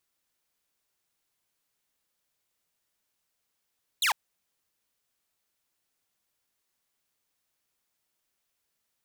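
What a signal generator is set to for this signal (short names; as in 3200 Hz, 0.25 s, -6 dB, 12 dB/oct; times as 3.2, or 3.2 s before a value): laser zap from 4200 Hz, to 750 Hz, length 0.10 s saw, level -19.5 dB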